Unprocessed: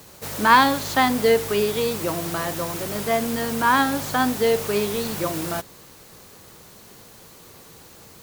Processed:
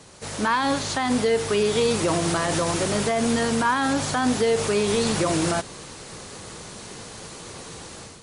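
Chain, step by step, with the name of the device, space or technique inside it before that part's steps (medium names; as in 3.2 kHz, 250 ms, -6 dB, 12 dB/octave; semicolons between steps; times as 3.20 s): low-bitrate web radio (level rider gain up to 9 dB; peak limiter -12 dBFS, peak gain reduction 10.5 dB; MP3 40 kbps 24 kHz)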